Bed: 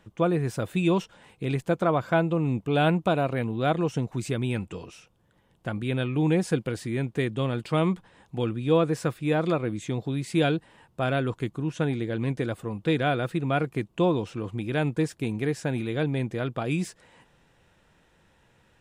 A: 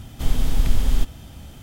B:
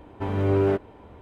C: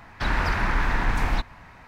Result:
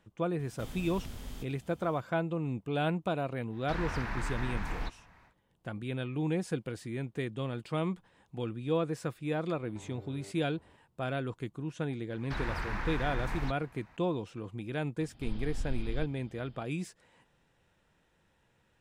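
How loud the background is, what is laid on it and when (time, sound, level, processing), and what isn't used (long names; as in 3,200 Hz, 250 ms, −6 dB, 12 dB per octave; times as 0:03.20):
bed −8.5 dB
0:00.39: mix in A −15.5 dB + high-pass filter 97 Hz 6 dB per octave
0:03.48: mix in C −12.5 dB, fades 0.10 s
0:09.55: mix in B −15.5 dB + downward compressor, threshold −32 dBFS
0:12.10: mix in C −12 dB
0:15.01: mix in A −17 dB + downsampling to 11,025 Hz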